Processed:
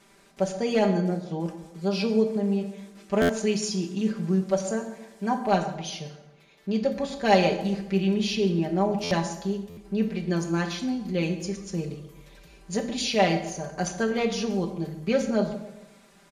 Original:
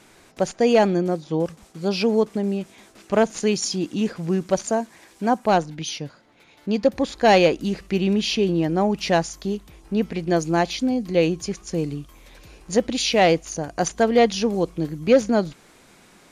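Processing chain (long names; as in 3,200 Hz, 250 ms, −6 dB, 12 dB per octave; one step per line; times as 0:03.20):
comb filter 5.1 ms, depth 85%
delay with a low-pass on its return 135 ms, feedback 44%, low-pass 970 Hz, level −13 dB
dense smooth reverb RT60 0.83 s, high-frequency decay 0.8×, DRR 5.5 dB
buffer that repeats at 0:03.21/0:09.03/0:09.69, samples 512, times 6
level −8.5 dB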